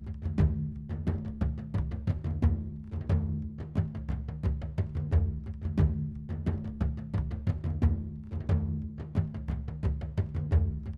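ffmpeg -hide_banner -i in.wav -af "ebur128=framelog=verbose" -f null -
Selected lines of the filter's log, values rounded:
Integrated loudness:
  I:         -32.5 LUFS
  Threshold: -42.5 LUFS
Loudness range:
  LRA:         1.0 LU
  Threshold: -52.6 LUFS
  LRA low:   -33.0 LUFS
  LRA high:  -32.0 LUFS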